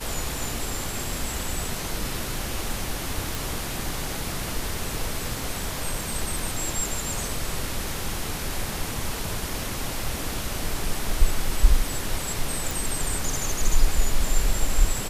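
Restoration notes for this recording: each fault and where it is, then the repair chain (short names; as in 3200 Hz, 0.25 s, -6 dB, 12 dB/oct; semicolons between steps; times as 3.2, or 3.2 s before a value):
3.35 pop
12.71 pop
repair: de-click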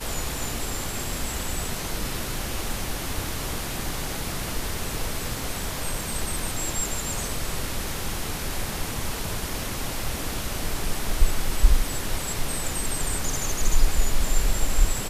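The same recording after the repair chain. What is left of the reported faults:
none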